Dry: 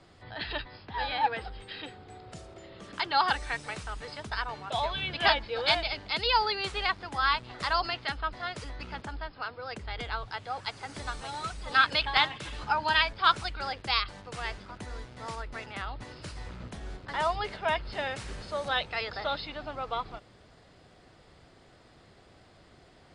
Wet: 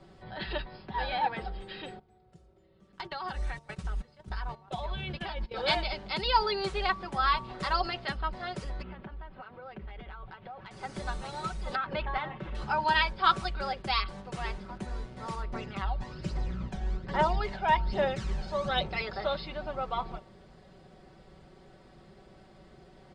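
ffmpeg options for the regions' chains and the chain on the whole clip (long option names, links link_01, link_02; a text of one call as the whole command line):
ffmpeg -i in.wav -filter_complex "[0:a]asettb=1/sr,asplit=3[link_01][link_02][link_03];[link_01]atrim=end=1.994[link_04];[link_02]atrim=start=1.99:end=5.54,asetpts=PTS-STARTPTS,afade=type=in:duration=0.004:curve=qsin,afade=type=out:start_time=3.546:duration=0.004:curve=qsin,equalizer=frequency=63:width_type=o:width=2.3:gain=8.5,agate=range=-20dB:threshold=-36dB:ratio=16:release=100:detection=peak,acompressor=threshold=-32dB:ratio=12:attack=3.2:release=140:knee=1:detection=peak[link_05];[link_03]atrim=start=5.536[link_06];[link_04][link_05]acrossfade=duration=0.004:curve1=hsin:curve2=qsin[link_07];[link_07][link_06]acrossfade=duration=0.004:curve1=qsin:curve2=hsin,asettb=1/sr,asplit=3[link_08][link_09][link_10];[link_08]atrim=end=8.824[link_11];[link_09]atrim=start=8.82:end=10.71,asetpts=PTS-STARTPTS,afade=type=in:duration=0.004:curve=qsin,afade=type=out:start_time=1.886:duration=0.004:curve=qsin,lowpass=frequency=3200:width=0.5412,lowpass=frequency=3200:width=1.3066,acompressor=threshold=-41dB:ratio=12:attack=3.2:release=140:knee=1:detection=peak[link_12];[link_10]atrim=start=10.706[link_13];[link_11][link_12]acrossfade=duration=0.004:curve1=hsin:curve2=qsin[link_14];[link_14][link_13]acrossfade=duration=0.004:curve1=qsin:curve2=hsin,asettb=1/sr,asplit=3[link_15][link_16][link_17];[link_15]atrim=end=11.754[link_18];[link_16]atrim=start=11.75:end=12.55,asetpts=PTS-STARTPTS,afade=type=in:duration=0.004:curve=qsin,afade=type=out:start_time=0.796:duration=0.004:curve=qsin,lowpass=1800,acompressor=threshold=-26dB:ratio=10:attack=3.2:release=140:knee=1:detection=peak[link_19];[link_17]atrim=start=12.546[link_20];[link_18][link_19]acrossfade=duration=0.004:curve1=hsin:curve2=qsin[link_21];[link_21][link_20]acrossfade=duration=0.004:curve1=qsin:curve2=hsin,asettb=1/sr,asplit=3[link_22][link_23][link_24];[link_22]atrim=end=15.534[link_25];[link_23]atrim=start=15.53:end=19.02,asetpts=PTS-STARTPTS,afade=type=in:duration=0.004:curve=qsin,afade=type=out:start_time=3.486:duration=0.004:curve=qsin,lowpass=frequency=7900:width=0.5412,lowpass=frequency=7900:width=1.3066,aphaser=in_gain=1:out_gain=1:delay=1.4:decay=0.49:speed=1.2:type=triangular[link_26];[link_24]atrim=start=19.016[link_27];[link_25][link_26]acrossfade=duration=0.004:curve1=hsin:curve2=qsin[link_28];[link_28][link_27]acrossfade=duration=0.004:curve1=qsin:curve2=hsin,tiltshelf=frequency=890:gain=4.5,aecho=1:1:5.3:0.65,bandreject=frequency=229.5:width_type=h:width=4,bandreject=frequency=459:width_type=h:width=4,bandreject=frequency=688.5:width_type=h:width=4,bandreject=frequency=918:width_type=h:width=4,bandreject=frequency=1147.5:width_type=h:width=4,volume=-1dB" out.wav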